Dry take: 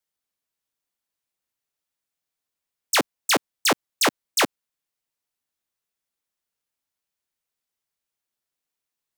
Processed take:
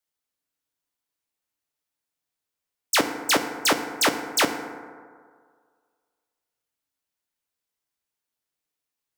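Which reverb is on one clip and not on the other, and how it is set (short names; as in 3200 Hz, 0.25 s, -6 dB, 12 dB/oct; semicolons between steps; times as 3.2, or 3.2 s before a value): FDN reverb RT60 1.9 s, low-frequency decay 0.85×, high-frequency decay 0.35×, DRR 6 dB; gain -1 dB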